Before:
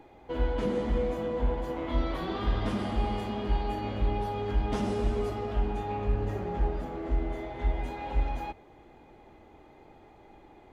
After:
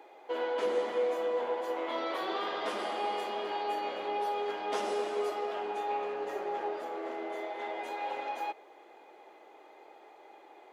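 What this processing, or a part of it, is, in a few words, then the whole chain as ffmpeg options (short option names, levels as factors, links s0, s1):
low shelf boost with a cut just above: -af "highpass=f=380:w=0.5412,highpass=f=380:w=1.3066,lowshelf=f=92:g=7.5,equalizer=f=250:t=o:w=0.93:g=-4.5,volume=1.33"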